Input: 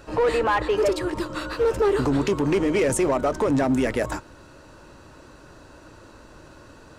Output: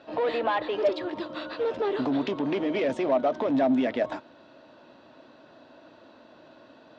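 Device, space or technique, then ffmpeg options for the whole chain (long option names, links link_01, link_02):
kitchen radio: -af "highpass=210,equalizer=frequency=250:width_type=q:width=4:gain=7,equalizer=frequency=420:width_type=q:width=4:gain=-3,equalizer=frequency=660:width_type=q:width=4:gain=10,equalizer=frequency=1300:width_type=q:width=4:gain=-3,equalizer=frequency=3500:width_type=q:width=4:gain=7,lowpass=frequency=4400:width=0.5412,lowpass=frequency=4400:width=1.3066,volume=-6dB"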